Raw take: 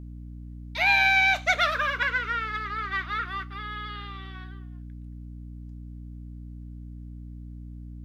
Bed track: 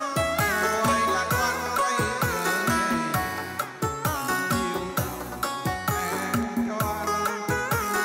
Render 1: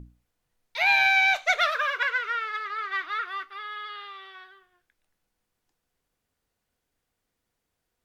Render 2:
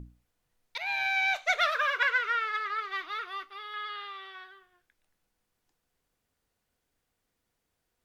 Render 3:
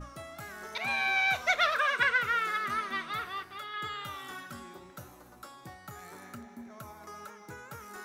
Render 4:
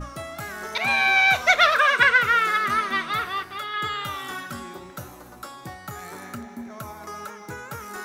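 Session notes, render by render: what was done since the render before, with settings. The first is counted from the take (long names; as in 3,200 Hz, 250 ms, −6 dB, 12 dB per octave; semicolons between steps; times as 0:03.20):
mains-hum notches 60/120/180/240/300 Hz
0:00.78–0:02.07: fade in, from −14.5 dB; 0:02.80–0:03.74: parametric band 1,600 Hz −9 dB 0.81 octaves
mix in bed track −20 dB
level +9.5 dB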